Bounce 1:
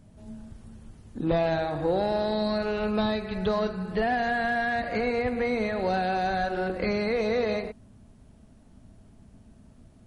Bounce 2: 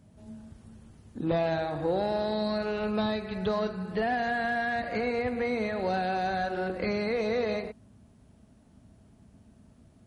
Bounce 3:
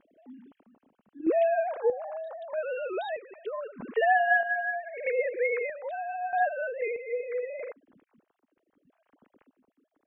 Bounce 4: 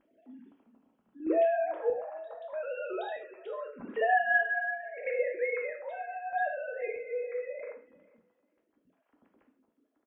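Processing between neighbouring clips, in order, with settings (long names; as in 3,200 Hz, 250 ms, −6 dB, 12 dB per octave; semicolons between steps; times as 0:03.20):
high-pass filter 57 Hz; level −2.5 dB
three sine waves on the formant tracks; square-wave tremolo 0.79 Hz, depth 60%, duty 50%; level +2.5 dB
repeating echo 444 ms, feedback 17%, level −23 dB; convolution reverb, pre-delay 3 ms, DRR 2 dB; level −5.5 dB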